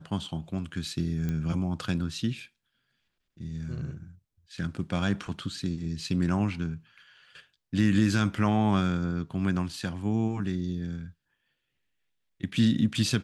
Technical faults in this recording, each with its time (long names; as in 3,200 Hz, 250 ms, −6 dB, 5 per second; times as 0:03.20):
0:01.29: click −20 dBFS